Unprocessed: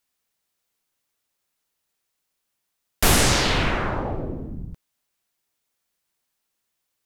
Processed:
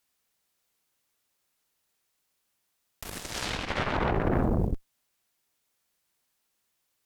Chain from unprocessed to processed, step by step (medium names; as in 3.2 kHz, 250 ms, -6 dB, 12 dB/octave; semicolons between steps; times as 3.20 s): compressor with a negative ratio -31 dBFS, ratio -1; Chebyshev shaper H 7 -23 dB, 8 -12 dB, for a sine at -15 dBFS